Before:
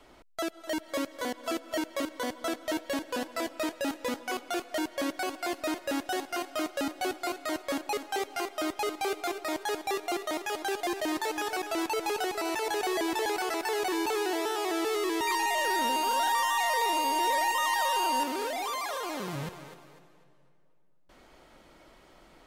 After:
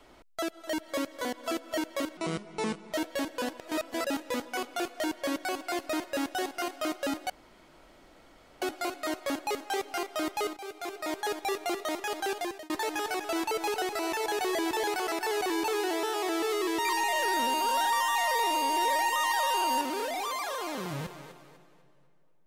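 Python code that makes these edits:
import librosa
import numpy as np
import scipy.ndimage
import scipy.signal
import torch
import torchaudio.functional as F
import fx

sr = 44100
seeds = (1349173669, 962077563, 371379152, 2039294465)

y = fx.edit(x, sr, fx.speed_span(start_s=2.17, length_s=0.5, speed=0.66),
    fx.reverse_span(start_s=3.34, length_s=0.47),
    fx.insert_room_tone(at_s=7.04, length_s=1.32),
    fx.fade_in_from(start_s=8.99, length_s=0.61, floor_db=-14.5),
    fx.fade_out_span(start_s=10.78, length_s=0.34), tone=tone)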